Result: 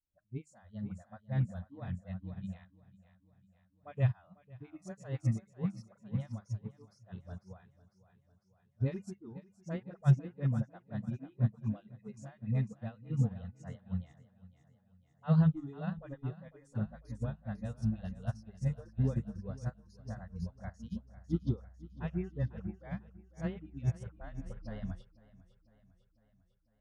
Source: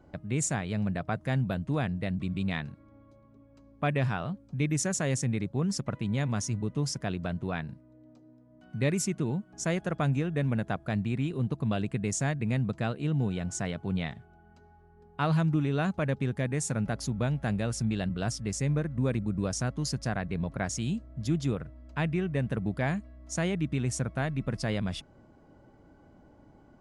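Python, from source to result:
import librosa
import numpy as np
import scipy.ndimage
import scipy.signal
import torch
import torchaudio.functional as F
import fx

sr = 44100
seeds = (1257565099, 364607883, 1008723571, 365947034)

p1 = fx.rattle_buzz(x, sr, strikes_db=-36.0, level_db=-40.0)
p2 = fx.low_shelf(p1, sr, hz=63.0, db=12.0)
p3 = fx.hum_notches(p2, sr, base_hz=50, count=6)
p4 = fx.dispersion(p3, sr, late='highs', ms=47.0, hz=530.0)
p5 = 10.0 ** (-22.5 / 20.0) * np.tanh(p4 / 10.0 ** (-22.5 / 20.0))
p6 = p4 + (p5 * 10.0 ** (-5.0 / 20.0))
p7 = fx.tilt_eq(p6, sr, slope=-2.5)
p8 = fx.noise_reduce_blind(p7, sr, reduce_db=23)
p9 = p8 + fx.echo_feedback(p8, sr, ms=500, feedback_pct=59, wet_db=-9, dry=0)
p10 = fx.upward_expand(p9, sr, threshold_db=-29.0, expansion=2.5)
y = p10 * 10.0 ** (-6.0 / 20.0)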